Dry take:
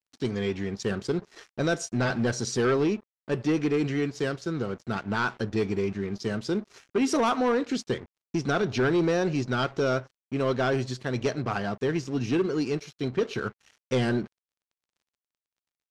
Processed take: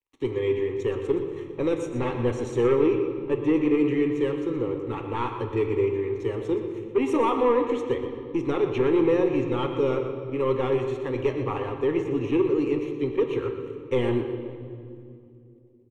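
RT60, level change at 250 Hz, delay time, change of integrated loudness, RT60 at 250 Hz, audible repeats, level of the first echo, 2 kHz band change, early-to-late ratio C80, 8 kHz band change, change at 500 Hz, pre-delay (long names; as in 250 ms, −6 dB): 2.6 s, +2.0 dB, 121 ms, +2.5 dB, 3.7 s, 1, −11.0 dB, −5.5 dB, 6.5 dB, below −10 dB, +4.5 dB, 3 ms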